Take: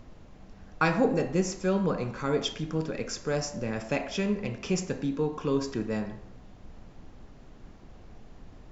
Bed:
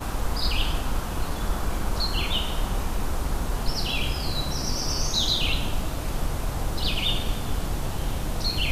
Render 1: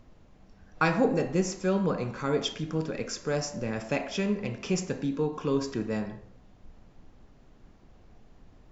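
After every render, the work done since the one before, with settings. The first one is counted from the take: noise print and reduce 6 dB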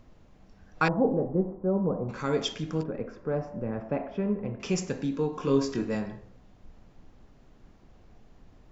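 0.88–2.09 inverse Chebyshev low-pass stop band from 4000 Hz, stop band 70 dB; 2.83–4.6 LPF 1100 Hz; 5.36–5.95 doubler 22 ms -5 dB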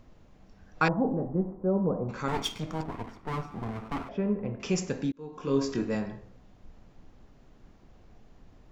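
0.93–1.59 bell 470 Hz -7 dB; 2.28–4.09 minimum comb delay 0.88 ms; 5.12–5.69 fade in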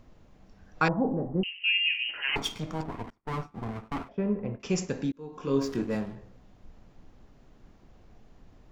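1.43–2.36 inverted band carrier 3000 Hz; 3.1–4.89 expander -36 dBFS; 5.61–6.16 backlash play -40.5 dBFS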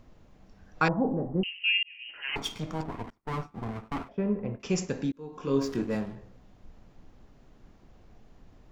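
1.83–2.62 fade in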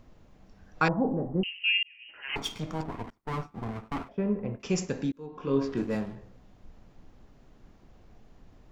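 1.87–2.3 Bessel low-pass 1900 Hz; 5.26–5.77 LPF 3600 Hz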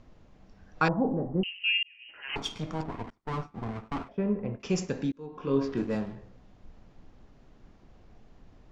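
LPF 7000 Hz 12 dB/oct; dynamic EQ 2100 Hz, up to -4 dB, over -48 dBFS, Q 3.8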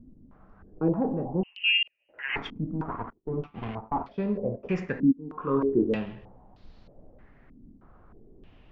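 soft clip -12.5 dBFS, distortion -26 dB; stepped low-pass 3.2 Hz 260–4300 Hz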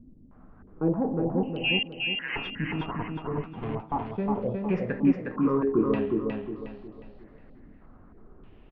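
air absorption 190 m; on a send: feedback echo 0.361 s, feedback 36%, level -3.5 dB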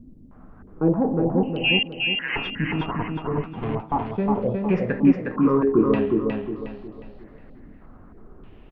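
gain +5.5 dB

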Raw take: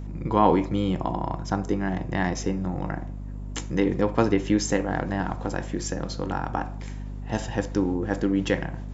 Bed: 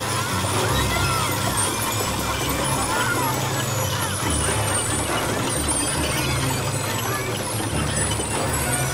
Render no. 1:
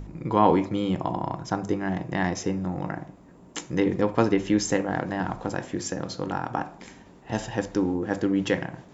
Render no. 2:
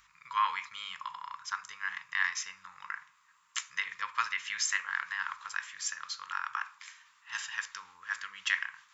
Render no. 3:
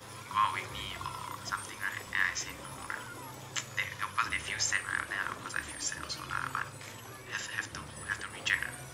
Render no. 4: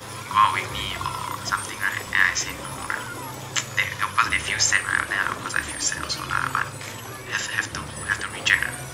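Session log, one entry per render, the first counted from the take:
de-hum 50 Hz, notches 5
elliptic high-pass 1100 Hz, stop band 40 dB; dynamic EQ 2000 Hz, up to +4 dB, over -43 dBFS, Q 1.4
add bed -23 dB
gain +11 dB

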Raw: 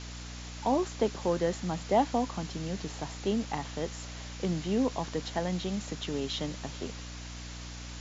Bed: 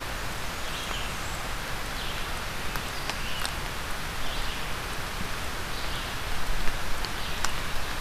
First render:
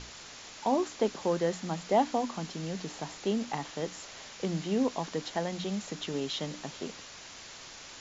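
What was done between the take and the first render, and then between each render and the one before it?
notches 60/120/180/240/300 Hz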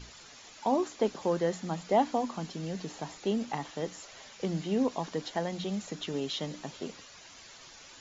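denoiser 9 dB, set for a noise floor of -48 dBFS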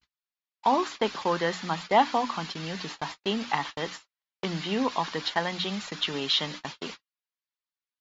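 gate -42 dBFS, range -58 dB; band shelf 2100 Hz +12 dB 2.8 oct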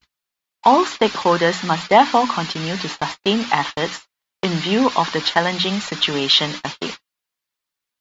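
gain +10.5 dB; limiter -1 dBFS, peak gain reduction 3 dB

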